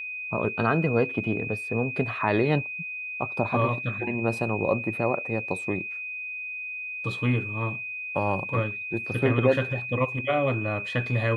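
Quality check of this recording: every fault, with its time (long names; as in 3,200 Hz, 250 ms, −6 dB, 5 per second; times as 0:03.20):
whistle 2,500 Hz −32 dBFS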